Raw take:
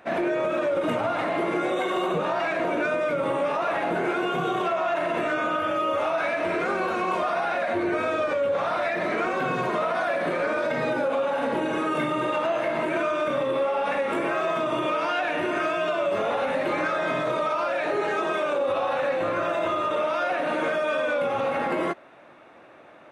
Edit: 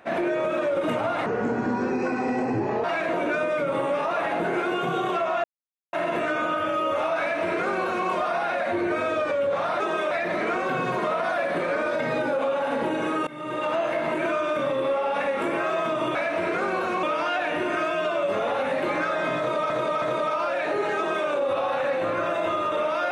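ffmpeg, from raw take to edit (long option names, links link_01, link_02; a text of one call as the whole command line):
ffmpeg -i in.wav -filter_complex "[0:a]asplit=11[link_01][link_02][link_03][link_04][link_05][link_06][link_07][link_08][link_09][link_10][link_11];[link_01]atrim=end=1.264[link_12];[link_02]atrim=start=1.26:end=2.35,asetpts=PTS-STARTPTS,asetrate=30429,aresample=44100,atrim=end_sample=69665,asetpts=PTS-STARTPTS[link_13];[link_03]atrim=start=2.346:end=4.95,asetpts=PTS-STARTPTS,afade=type=out:start_time=2.6:duration=0.004:curve=hsin,apad=pad_dur=0.49[link_14];[link_04]atrim=start=4.95:end=8.822,asetpts=PTS-STARTPTS,afade=type=in:duration=0.004:curve=hsin[link_15];[link_05]atrim=start=18.158:end=18.472[link_16];[link_06]atrim=start=8.818:end=11.98,asetpts=PTS-STARTPTS,afade=type=out:start_time=3.158:duration=0.004:curve=hsin:silence=0.0794328[link_17];[link_07]atrim=start=11.98:end=14.862,asetpts=PTS-STARTPTS,afade=type=in:duration=0.43:silence=0.0794328[link_18];[link_08]atrim=start=6.218:end=7.102[link_19];[link_09]atrim=start=14.858:end=17.532[link_20];[link_10]atrim=start=17.208:end=17.532[link_21];[link_11]atrim=start=17.208[link_22];[link_12][link_13]acrossfade=duration=0.004:curve1=hsin:curve2=hsin[link_23];[link_14][link_15]concat=n=2:v=0:a=1[link_24];[link_23][link_24]acrossfade=duration=0.004:curve1=hsin:curve2=hsin[link_25];[link_25][link_16]acrossfade=duration=0.004:curve1=hsin:curve2=hsin[link_26];[link_17][link_18]concat=n=2:v=0:a=1[link_27];[link_26][link_27]acrossfade=duration=0.004:curve1=hsin:curve2=hsin[link_28];[link_28][link_19]acrossfade=duration=0.004:curve1=hsin:curve2=hsin[link_29];[link_29][link_20]acrossfade=duration=0.004:curve1=hsin:curve2=hsin[link_30];[link_30][link_21]acrossfade=duration=0.004:curve1=hsin:curve2=hsin[link_31];[link_31][link_22]acrossfade=duration=0.004:curve1=hsin:curve2=hsin" out.wav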